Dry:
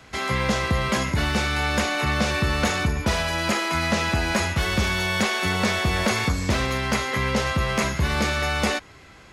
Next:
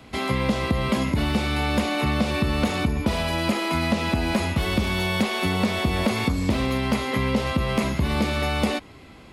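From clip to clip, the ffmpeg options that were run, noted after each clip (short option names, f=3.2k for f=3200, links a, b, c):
-af "equalizer=f=250:t=o:w=0.67:g=7,equalizer=f=1.6k:t=o:w=0.67:g=-8,equalizer=f=6.3k:t=o:w=0.67:g=-9,acompressor=threshold=-21dB:ratio=3,volume=2dB"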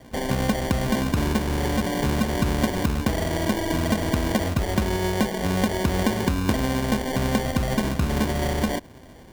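-af "acrusher=samples=34:mix=1:aa=0.000001"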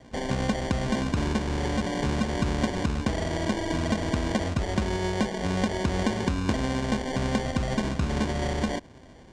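-af "lowpass=f=8k:w=0.5412,lowpass=f=8k:w=1.3066,volume=-3.5dB"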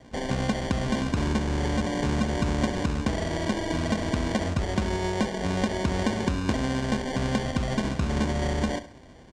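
-af "aecho=1:1:68|136|204|272:0.2|0.0778|0.0303|0.0118"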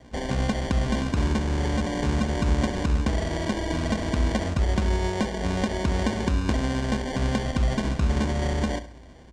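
-af "equalizer=f=60:t=o:w=0.26:g=13.5"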